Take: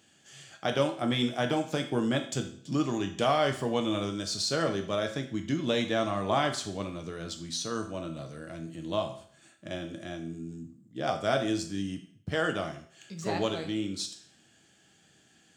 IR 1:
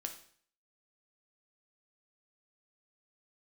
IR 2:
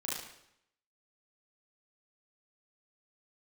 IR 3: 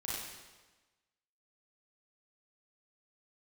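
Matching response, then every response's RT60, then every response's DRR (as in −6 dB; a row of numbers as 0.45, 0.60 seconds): 1; 0.55, 0.75, 1.2 seconds; 4.5, −6.5, −7.5 decibels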